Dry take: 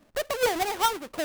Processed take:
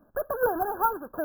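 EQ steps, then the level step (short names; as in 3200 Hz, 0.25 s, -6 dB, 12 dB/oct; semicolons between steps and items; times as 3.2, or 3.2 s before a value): brick-wall FIR band-stop 1700–11000 Hz; 0.0 dB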